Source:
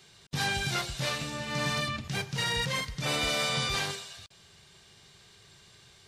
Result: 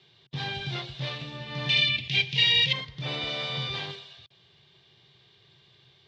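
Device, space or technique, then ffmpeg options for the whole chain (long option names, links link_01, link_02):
guitar cabinet: -filter_complex "[0:a]highpass=92,equalizer=frequency=130:width_type=q:width=4:gain=8,equalizer=frequency=210:width_type=q:width=4:gain=-4,equalizer=frequency=360:width_type=q:width=4:gain=4,equalizer=frequency=1400:width_type=q:width=4:gain=-6,equalizer=frequency=3400:width_type=q:width=4:gain=7,lowpass=frequency=4300:width=0.5412,lowpass=frequency=4300:width=1.3066,asettb=1/sr,asplit=3[link_01][link_02][link_03];[link_01]atrim=end=1.694[link_04];[link_02]atrim=start=1.69:end=2.73,asetpts=PTS-STARTPTS,afade=type=in:duration=0.004:curve=qsin,afade=type=out:start_time=1.036:duration=0.004:curve=qsin,highshelf=frequency=1800:width_type=q:width=3:gain=10[link_05];[link_03]atrim=start=2.726[link_06];[link_04][link_05]acrossfade=duration=0.004:curve1=hsin:curve2=qsin[link_07];[link_07][link_06]acrossfade=duration=0.004:curve1=qsin:curve2=hsin,volume=-4dB"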